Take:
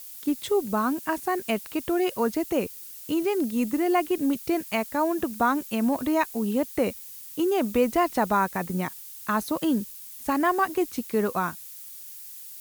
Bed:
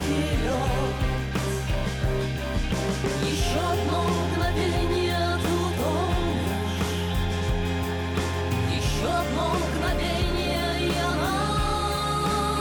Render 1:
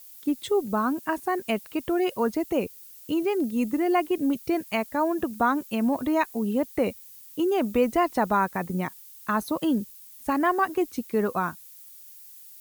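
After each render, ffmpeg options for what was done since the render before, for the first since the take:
-af "afftdn=nr=7:nf=-42"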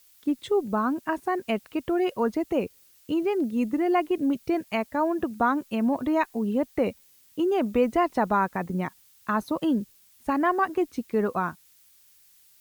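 -af "lowpass=f=3.5k:p=1"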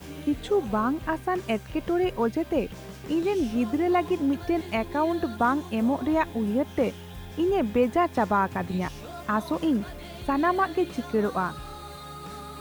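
-filter_complex "[1:a]volume=-15dB[a];[0:a][a]amix=inputs=2:normalize=0"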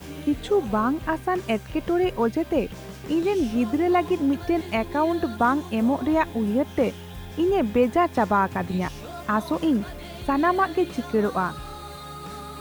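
-af "volume=2.5dB"

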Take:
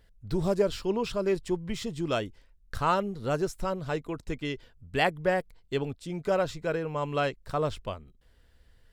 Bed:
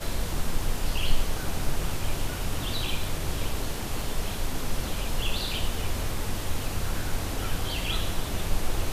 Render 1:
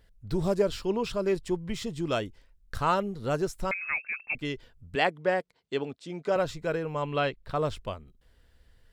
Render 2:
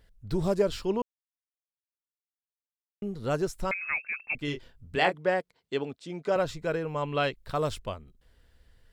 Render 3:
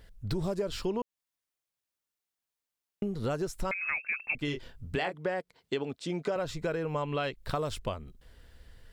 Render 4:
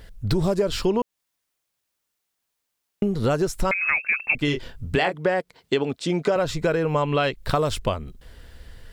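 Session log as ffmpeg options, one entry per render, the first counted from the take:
-filter_complex "[0:a]asettb=1/sr,asplit=3[a][b][c];[a]atrim=end=3.714[d];[b]atrim=start=3.71:end=4.35,asetpts=PTS-STARTPTS,afade=t=in:d=0.004:c=qsin,afade=t=out:st=0.636:d=0.004:c=qsin,lowpass=f=2.3k:t=q:w=0.5098,lowpass=f=2.3k:t=q:w=0.6013,lowpass=f=2.3k:t=q:w=0.9,lowpass=f=2.3k:t=q:w=2.563,afreqshift=-2700[e];[c]atrim=start=4.346[f];[d][e]acrossfade=d=0.004:c1=hsin:c2=qsin[g];[g][f]acrossfade=d=0.004:c1=qsin:c2=hsin,asettb=1/sr,asplit=3[h][i][j];[h]atrim=end=4.954[k];[i]atrim=start=4.95:end=6.36,asetpts=PTS-STARTPTS,afade=t=in:d=0.004:c=qsin,afade=t=out:st=1.406:d=0.004:c=qsin,highpass=210,lowpass=6.7k[l];[j]atrim=start=6.356[m];[k][l]acrossfade=d=0.004:c1=hsin:c2=qsin[n];[n][m]acrossfade=d=0.004:c1=qsin:c2=hsin,asettb=1/sr,asplit=3[o][p][q];[o]atrim=end=7.024[r];[p]atrim=start=7.02:end=7.55,asetpts=PTS-STARTPTS,afade=t=in:d=0.004:c=qsin,afade=t=out:st=0.526:d=0.004:c=qsin,highshelf=f=4.9k:t=q:w=1.5:g=-8.5[s];[q]atrim=start=7.546[t];[r][s]acrossfade=d=0.004:c1=hsin:c2=qsin[u];[u][t]acrossfade=d=0.004:c1=qsin:c2=hsin"
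-filter_complex "[0:a]asettb=1/sr,asplit=3[a][b][c];[a]atrim=end=4.454[d];[b]atrim=start=4.45:end=5.15,asetpts=PTS-STARTPTS,afade=t=in:d=0.004:c=qsin,afade=t=out:st=0.696:d=0.004:c=qsin,asplit=2[e][f];[f]adelay=27,volume=-6dB[g];[e][g]amix=inputs=2:normalize=0,atrim=end_sample=30870[h];[c]atrim=start=5.146[i];[d][h]acrossfade=d=0.004:c1=hsin:c2=qsin[j];[j][i]acrossfade=d=0.004:c1=qsin:c2=hsin,asettb=1/sr,asplit=3[k][l][m];[k]atrim=end=7.204[n];[l]atrim=start=7.2:end=7.79,asetpts=PTS-STARTPTS,afade=t=in:d=0.004:c=qsin,afade=t=out:st=0.586:d=0.004:c=qsin,aemphasis=mode=production:type=cd[o];[m]atrim=start=7.786[p];[n][o]acrossfade=d=0.004:c1=hsin:c2=qsin[q];[q][p]acrossfade=d=0.004:c1=qsin:c2=hsin,asplit=3[r][s][t];[r]atrim=end=1.02,asetpts=PTS-STARTPTS,afade=t=out:st=1.016:d=0.004:c=hsin[u];[s]atrim=start=1.02:end=3.02,asetpts=PTS-STARTPTS,volume=0[v];[t]atrim=start=3.02,asetpts=PTS-STARTPTS,afade=t=in:d=0.004:c=hsin[w];[u][v][w]concat=n=3:v=0:a=1"
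-filter_complex "[0:a]asplit=2[a][b];[b]alimiter=limit=-21dB:level=0:latency=1,volume=1dB[c];[a][c]amix=inputs=2:normalize=0,acompressor=threshold=-29dB:ratio=6"
-af "volume=10dB"

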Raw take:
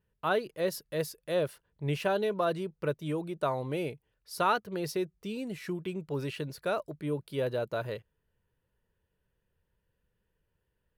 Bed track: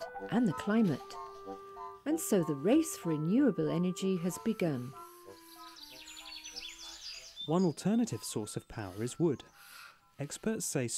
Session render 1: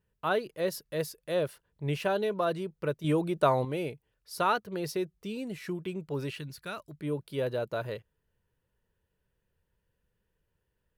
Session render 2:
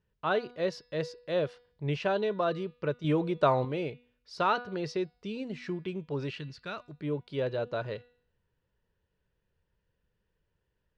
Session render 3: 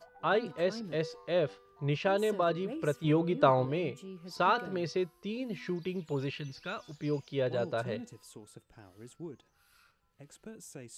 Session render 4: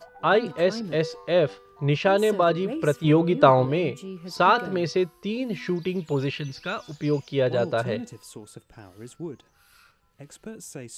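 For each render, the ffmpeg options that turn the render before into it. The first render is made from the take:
-filter_complex "[0:a]asettb=1/sr,asplit=3[a][b][c];[a]atrim=end=3.044[d];[b]atrim=start=3.04:end=3.65,asetpts=PTS-STARTPTS,afade=t=in:d=0.004:c=qsin,afade=t=out:st=0.606:d=0.004:c=qsin,acontrast=56[e];[c]atrim=start=3.646[f];[d][e]acrossfade=d=0.004:c1=hsin:c2=qsin[g];[g][f]acrossfade=d=0.004:c1=qsin:c2=hsin,asettb=1/sr,asplit=3[h][i][j];[h]atrim=end=6.394[k];[i]atrim=start=6.39:end=7,asetpts=PTS-STARTPTS,afade=t=in:d=0.004:c=qsin,afade=t=out:st=0.606:d=0.004:c=qsin,equalizer=f=550:t=o:w=1.6:g=-13.5[l];[j]atrim=start=6.996[m];[k][l]acrossfade=d=0.004:c1=hsin:c2=qsin[n];[n][m]acrossfade=d=0.004:c1=qsin:c2=hsin"
-af "lowpass=f=5.6k:w=0.5412,lowpass=f=5.6k:w=1.3066,bandreject=f=243.8:t=h:w=4,bandreject=f=487.6:t=h:w=4,bandreject=f=731.4:t=h:w=4,bandreject=f=975.2:t=h:w=4,bandreject=f=1.219k:t=h:w=4,bandreject=f=1.4628k:t=h:w=4,bandreject=f=1.7066k:t=h:w=4,bandreject=f=1.9504k:t=h:w=4,bandreject=f=2.1942k:t=h:w=4,bandreject=f=2.438k:t=h:w=4,bandreject=f=2.6818k:t=h:w=4,bandreject=f=2.9256k:t=h:w=4,bandreject=f=3.1694k:t=h:w=4,bandreject=f=3.4132k:t=h:w=4,bandreject=f=3.657k:t=h:w=4,bandreject=f=3.9008k:t=h:w=4,bandreject=f=4.1446k:t=h:w=4,bandreject=f=4.3884k:t=h:w=4,bandreject=f=4.6322k:t=h:w=4,bandreject=f=4.876k:t=h:w=4,bandreject=f=5.1198k:t=h:w=4"
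-filter_complex "[1:a]volume=-13.5dB[a];[0:a][a]amix=inputs=2:normalize=0"
-af "volume=8.5dB"

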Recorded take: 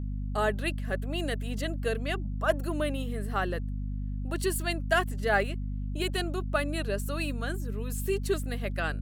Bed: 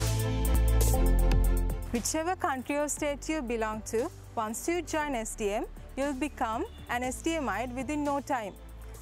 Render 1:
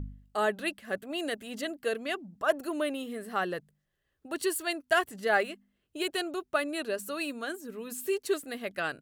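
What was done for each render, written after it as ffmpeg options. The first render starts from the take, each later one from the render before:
-af "bandreject=f=50:t=h:w=4,bandreject=f=100:t=h:w=4,bandreject=f=150:t=h:w=4,bandreject=f=200:t=h:w=4,bandreject=f=250:t=h:w=4"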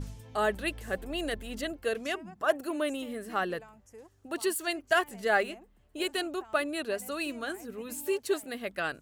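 -filter_complex "[1:a]volume=-20.5dB[a];[0:a][a]amix=inputs=2:normalize=0"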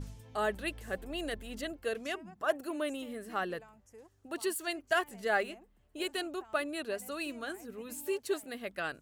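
-af "volume=-4dB"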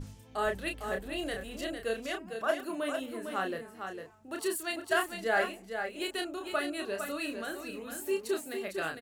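-filter_complex "[0:a]asplit=2[a][b];[b]adelay=31,volume=-5dB[c];[a][c]amix=inputs=2:normalize=0,asplit=2[d][e];[e]aecho=0:1:453:0.447[f];[d][f]amix=inputs=2:normalize=0"

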